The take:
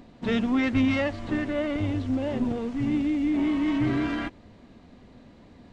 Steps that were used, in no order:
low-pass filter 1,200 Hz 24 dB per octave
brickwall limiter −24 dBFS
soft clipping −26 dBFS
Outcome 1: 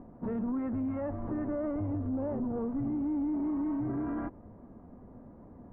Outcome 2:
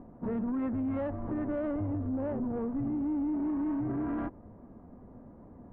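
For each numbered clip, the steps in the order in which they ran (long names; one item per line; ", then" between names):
brickwall limiter, then soft clipping, then low-pass filter
low-pass filter, then brickwall limiter, then soft clipping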